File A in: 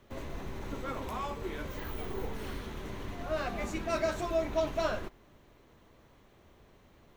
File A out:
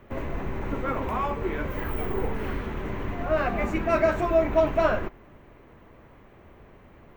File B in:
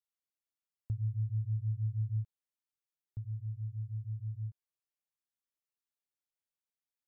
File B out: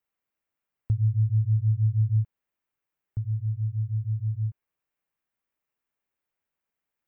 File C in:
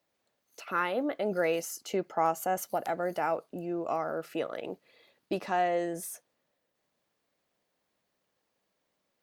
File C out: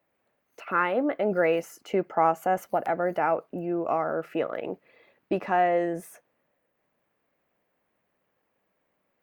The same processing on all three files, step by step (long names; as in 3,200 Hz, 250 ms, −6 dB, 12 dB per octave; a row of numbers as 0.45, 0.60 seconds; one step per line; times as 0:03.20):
flat-topped bell 6,800 Hz −14 dB 2.3 octaves
loudness normalisation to −27 LKFS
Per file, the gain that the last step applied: +9.0, +11.0, +5.0 decibels